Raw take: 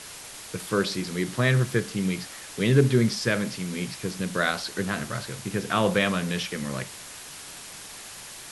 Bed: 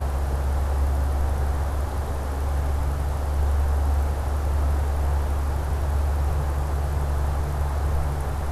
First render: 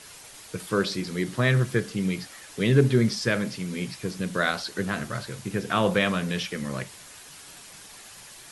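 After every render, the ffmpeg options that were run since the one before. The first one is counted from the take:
-af "afftdn=nr=6:nf=-42"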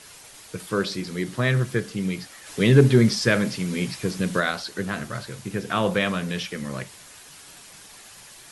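-filter_complex "[0:a]asplit=3[a][b][c];[a]afade=t=out:st=2.45:d=0.02[d];[b]acontrast=21,afade=t=in:st=2.45:d=0.02,afade=t=out:st=4.39:d=0.02[e];[c]afade=t=in:st=4.39:d=0.02[f];[d][e][f]amix=inputs=3:normalize=0"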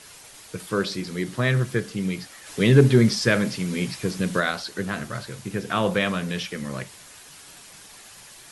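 -af anull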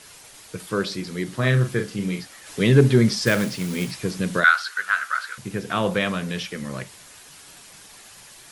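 -filter_complex "[0:a]asettb=1/sr,asplit=3[a][b][c];[a]atrim=end=1.374[d];[b]atrim=start=1.37:end=2.21,asetpts=PTS-STARTPTS,afade=t=in:d=0.004:c=qsin,afade=t=out:st=0.836:d=0.004:c=qsin,asplit=2[e][f];[f]adelay=39,volume=-6.5dB[g];[e][g]amix=inputs=2:normalize=0,atrim=end_sample=37044[h];[c]atrim=start=2.206[i];[d][h]acrossfade=d=0.004:c1=hsin:c2=qsin[j];[j][i]acrossfade=d=0.004:c1=qsin:c2=hsin,asettb=1/sr,asplit=3[k][l][m];[k]atrim=end=3.264[n];[l]atrim=start=3.26:end=3.91,asetpts=PTS-STARTPTS,afade=t=in:d=0.004:c=qsin,afade=t=out:st=0.646:d=0.004:c=qsin,acrusher=bits=3:mode=log:mix=0:aa=0.000001[o];[m]atrim=start=3.906[p];[n][o]acrossfade=d=0.004:c1=hsin:c2=qsin[q];[q][p]acrossfade=d=0.004:c1=qsin:c2=hsin,asettb=1/sr,asplit=3[r][s][t];[r]atrim=end=4.444[u];[s]atrim=start=4.44:end=5.38,asetpts=PTS-STARTPTS,afade=t=in:d=0.004:c=qsin,afade=t=out:st=0.936:d=0.004:c=qsin,highpass=f=1.4k:t=q:w=5.6[v];[t]atrim=start=5.376[w];[u][v]acrossfade=d=0.004:c1=hsin:c2=qsin[x];[x][w]acrossfade=d=0.004:c1=qsin:c2=hsin"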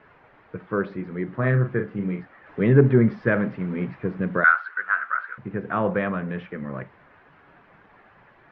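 -af "lowpass=f=1.8k:w=0.5412,lowpass=f=1.8k:w=1.3066,lowshelf=f=65:g=-7"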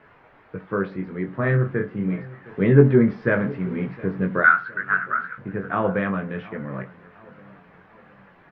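-filter_complex "[0:a]asplit=2[a][b];[b]adelay=21,volume=-6dB[c];[a][c]amix=inputs=2:normalize=0,asplit=2[d][e];[e]adelay=713,lowpass=f=2k:p=1,volume=-20dB,asplit=2[f][g];[g]adelay=713,lowpass=f=2k:p=1,volume=0.5,asplit=2[h][i];[i]adelay=713,lowpass=f=2k:p=1,volume=0.5,asplit=2[j][k];[k]adelay=713,lowpass=f=2k:p=1,volume=0.5[l];[d][f][h][j][l]amix=inputs=5:normalize=0"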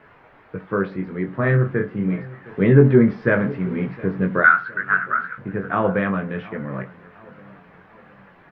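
-af "volume=2.5dB,alimiter=limit=-2dB:level=0:latency=1"

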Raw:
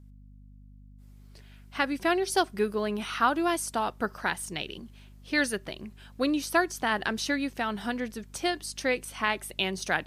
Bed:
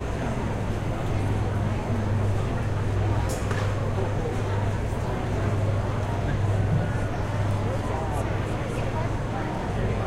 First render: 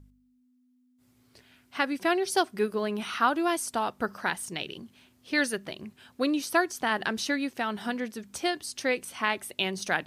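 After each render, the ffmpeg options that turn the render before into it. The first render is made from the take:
-af "bandreject=f=50:t=h:w=4,bandreject=f=100:t=h:w=4,bandreject=f=150:t=h:w=4,bandreject=f=200:t=h:w=4"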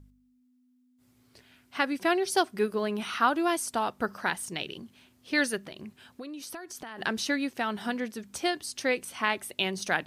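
-filter_complex "[0:a]asplit=3[a][b][c];[a]afade=t=out:st=5.61:d=0.02[d];[b]acompressor=threshold=-37dB:ratio=10:attack=3.2:release=140:knee=1:detection=peak,afade=t=in:st=5.61:d=0.02,afade=t=out:st=6.97:d=0.02[e];[c]afade=t=in:st=6.97:d=0.02[f];[d][e][f]amix=inputs=3:normalize=0"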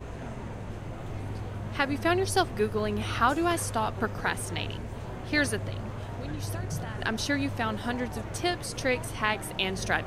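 -filter_complex "[1:a]volume=-10.5dB[a];[0:a][a]amix=inputs=2:normalize=0"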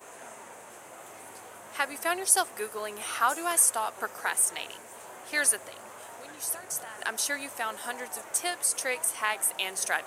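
-af "highpass=650,highshelf=f=6.2k:t=q:w=1.5:g=12"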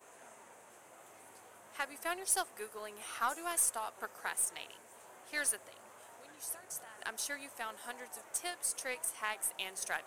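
-af "aeval=exprs='0.473*(cos(1*acos(clip(val(0)/0.473,-1,1)))-cos(1*PI/2))+0.075*(cos(2*acos(clip(val(0)/0.473,-1,1)))-cos(2*PI/2))+0.0668*(cos(3*acos(clip(val(0)/0.473,-1,1)))-cos(3*PI/2))+0.0106*(cos(4*acos(clip(val(0)/0.473,-1,1)))-cos(4*PI/2))+0.0188*(cos(7*acos(clip(val(0)/0.473,-1,1)))-cos(7*PI/2))':c=same,asoftclip=type=tanh:threshold=-23dB"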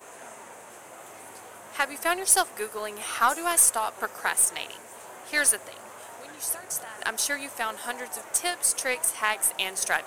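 -af "volume=12dB"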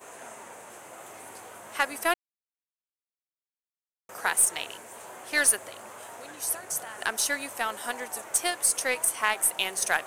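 -filter_complex "[0:a]asplit=3[a][b][c];[a]atrim=end=2.14,asetpts=PTS-STARTPTS,afade=t=out:st=2.136:d=0.004:c=hsin[d];[b]atrim=start=2.14:end=4.09,asetpts=PTS-STARTPTS,volume=0[e];[c]atrim=start=4.09,asetpts=PTS-STARTPTS,afade=t=in:d=0.004:c=hsin[f];[d][e][f]concat=n=3:v=0:a=1"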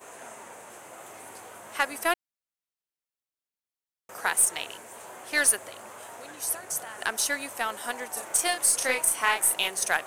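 -filter_complex "[0:a]asettb=1/sr,asplit=3[a][b][c];[a]atrim=end=8.134[d];[b]atrim=start=8.13:end=9.68,asetpts=PTS-STARTPTS,afade=t=in:d=0.004:c=qsin,afade=t=out:st=1.546:d=0.004:c=qsin,asplit=2[e][f];[f]adelay=35,volume=-3dB[g];[e][g]amix=inputs=2:normalize=0,atrim=end_sample=68355[h];[c]atrim=start=9.676[i];[d][h]acrossfade=d=0.004:c1=hsin:c2=qsin[j];[j][i]acrossfade=d=0.004:c1=qsin:c2=hsin"

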